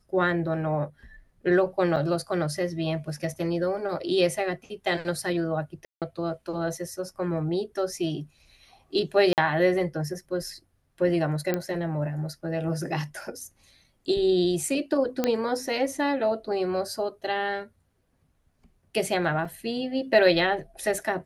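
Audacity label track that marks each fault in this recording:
1.960000	1.970000	gap 5.9 ms
5.850000	6.020000	gap 0.167 s
9.330000	9.380000	gap 48 ms
11.540000	11.540000	pop -13 dBFS
15.240000	15.240000	pop -10 dBFS
19.450000	19.450000	gap 4.4 ms

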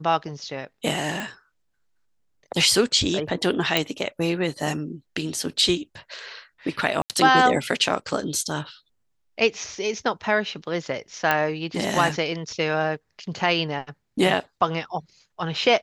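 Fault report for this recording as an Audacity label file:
1.200000	1.200000	pop
3.770000	3.770000	pop -4 dBFS
7.020000	7.100000	gap 78 ms
11.310000	11.310000	pop -7 dBFS

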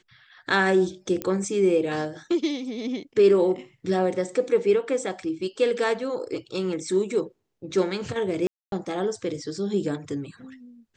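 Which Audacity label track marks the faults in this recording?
1.220000	1.220000	pop -14 dBFS
8.470000	8.720000	gap 0.252 s

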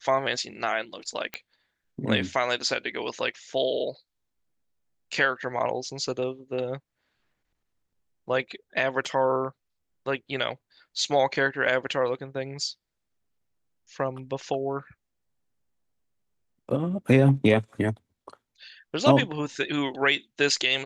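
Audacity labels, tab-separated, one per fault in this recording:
1.340000	1.340000	pop -16 dBFS

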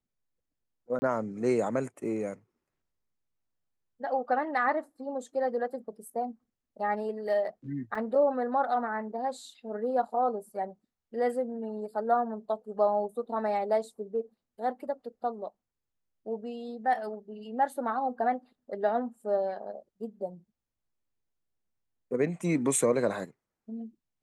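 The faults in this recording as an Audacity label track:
0.990000	1.020000	gap 30 ms
7.950000	7.950000	gap 4.4 ms

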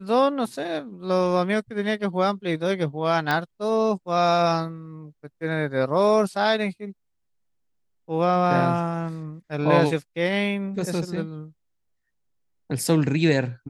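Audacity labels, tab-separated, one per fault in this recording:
3.310000	3.310000	pop -10 dBFS

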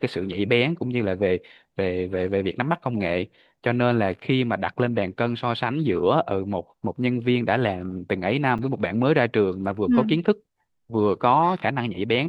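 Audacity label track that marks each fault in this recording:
8.580000	8.590000	gap 7.2 ms

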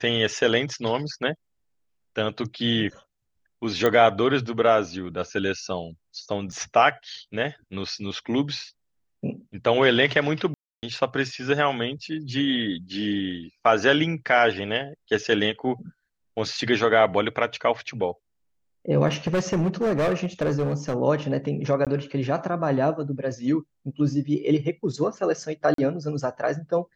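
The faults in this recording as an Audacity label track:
3.860000	3.860000	pop -9 dBFS
6.520000	6.530000	gap 6 ms
10.540000	10.830000	gap 0.289 s
19.070000	20.950000	clipped -19 dBFS
21.850000	21.870000	gap 17 ms
25.740000	25.780000	gap 43 ms

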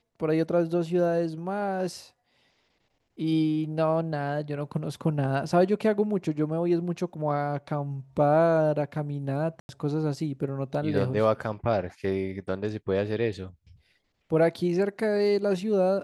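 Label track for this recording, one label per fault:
9.600000	9.690000	gap 91 ms

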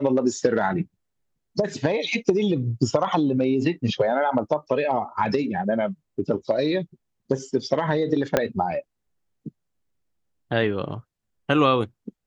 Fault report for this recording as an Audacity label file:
8.370000	8.370000	pop -5 dBFS

